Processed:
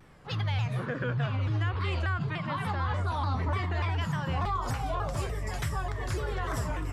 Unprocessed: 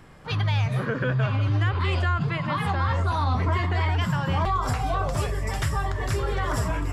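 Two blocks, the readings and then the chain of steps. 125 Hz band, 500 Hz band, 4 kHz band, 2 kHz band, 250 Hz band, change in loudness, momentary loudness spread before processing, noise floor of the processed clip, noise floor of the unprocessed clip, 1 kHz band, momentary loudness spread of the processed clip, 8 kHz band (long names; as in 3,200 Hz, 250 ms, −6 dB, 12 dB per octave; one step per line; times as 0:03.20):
−6.0 dB, −6.0 dB, −6.0 dB, −5.5 dB, −6.0 dB, −6.0 dB, 4 LU, −37 dBFS, −31 dBFS, −6.0 dB, 4 LU, −6.0 dB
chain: pitch modulation by a square or saw wave saw down 3.4 Hz, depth 160 cents
level −6 dB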